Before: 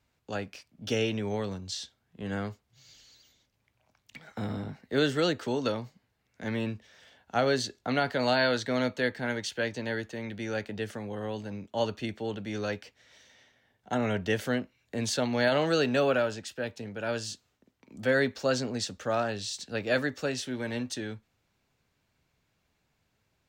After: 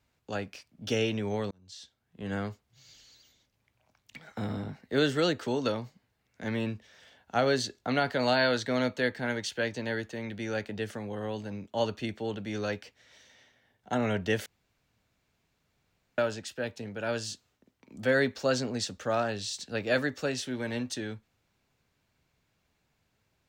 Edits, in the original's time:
1.51–2.33 s: fade in
14.46–16.18 s: room tone

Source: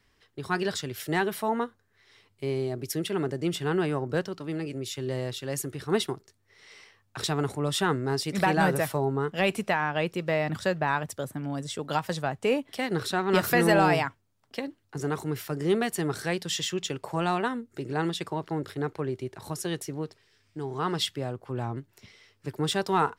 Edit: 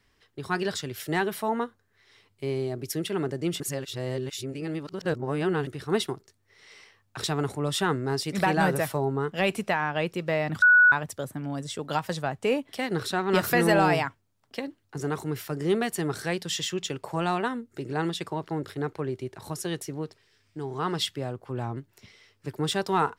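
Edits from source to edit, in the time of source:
3.60–5.67 s: reverse
10.62–10.92 s: bleep 1.47 kHz -13 dBFS

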